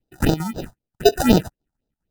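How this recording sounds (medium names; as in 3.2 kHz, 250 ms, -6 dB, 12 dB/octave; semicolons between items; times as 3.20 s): aliases and images of a low sample rate 1.1 kHz, jitter 0%; phasing stages 4, 3.9 Hz, lowest notch 380–2200 Hz; chopped level 2.5 Hz, depth 65%, duty 85%; Vorbis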